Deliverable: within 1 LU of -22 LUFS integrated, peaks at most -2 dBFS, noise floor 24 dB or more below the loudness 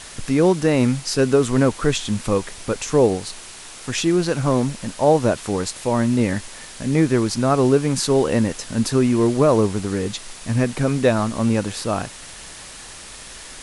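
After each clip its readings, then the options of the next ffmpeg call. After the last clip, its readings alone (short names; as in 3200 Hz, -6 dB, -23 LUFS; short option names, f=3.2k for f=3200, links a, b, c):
noise floor -39 dBFS; noise floor target -44 dBFS; loudness -20.0 LUFS; peak -3.5 dBFS; loudness target -22.0 LUFS
-> -af "afftdn=nr=6:nf=-39"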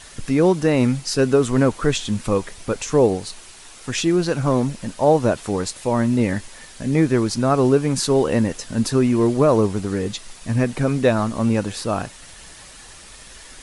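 noise floor -43 dBFS; noise floor target -44 dBFS
-> -af "afftdn=nr=6:nf=-43"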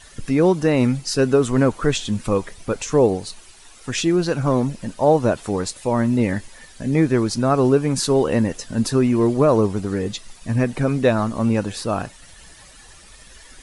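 noise floor -46 dBFS; loudness -20.0 LUFS; peak -4.0 dBFS; loudness target -22.0 LUFS
-> -af "volume=-2dB"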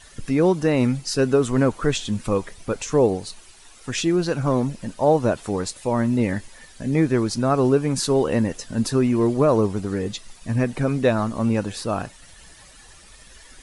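loudness -22.0 LUFS; peak -6.0 dBFS; noise floor -48 dBFS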